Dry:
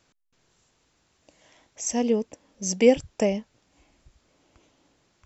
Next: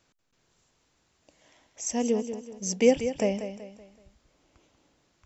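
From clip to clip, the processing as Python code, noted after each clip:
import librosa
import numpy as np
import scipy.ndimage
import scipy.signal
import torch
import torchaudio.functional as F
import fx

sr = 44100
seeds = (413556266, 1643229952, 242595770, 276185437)

y = fx.echo_feedback(x, sr, ms=189, feedback_pct=39, wet_db=-10.0)
y = F.gain(torch.from_numpy(y), -3.0).numpy()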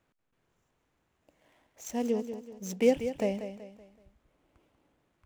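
y = scipy.signal.medfilt(x, 9)
y = F.gain(torch.from_numpy(y), -3.5).numpy()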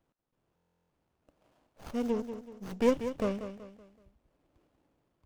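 y = fx.buffer_glitch(x, sr, at_s=(0.55,), block=1024, repeats=14)
y = fx.running_max(y, sr, window=17)
y = F.gain(torch.from_numpy(y), -1.5).numpy()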